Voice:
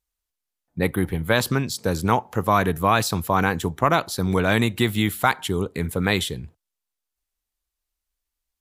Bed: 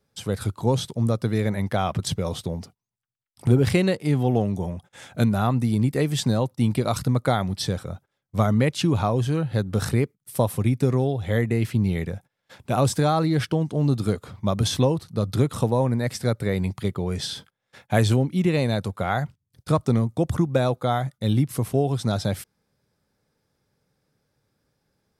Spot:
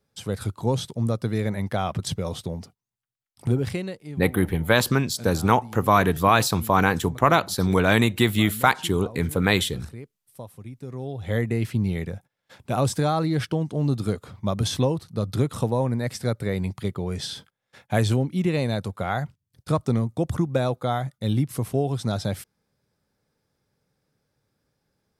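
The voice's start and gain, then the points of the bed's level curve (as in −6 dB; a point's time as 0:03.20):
3.40 s, +1.0 dB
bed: 0:03.39 −2 dB
0:04.25 −18 dB
0:10.80 −18 dB
0:11.30 −2 dB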